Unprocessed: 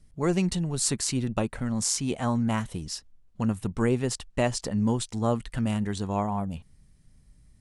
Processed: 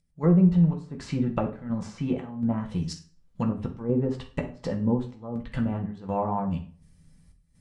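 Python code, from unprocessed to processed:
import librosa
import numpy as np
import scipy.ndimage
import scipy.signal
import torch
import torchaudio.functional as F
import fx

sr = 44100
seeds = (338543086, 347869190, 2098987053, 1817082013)

y = fx.env_lowpass_down(x, sr, base_hz=660.0, full_db=-21.0)
y = fx.volume_shaper(y, sr, bpm=82, per_beat=1, depth_db=-19, release_ms=231.0, shape='slow start')
y = fx.rev_fdn(y, sr, rt60_s=0.44, lf_ratio=1.05, hf_ratio=0.8, size_ms=35.0, drr_db=1.0)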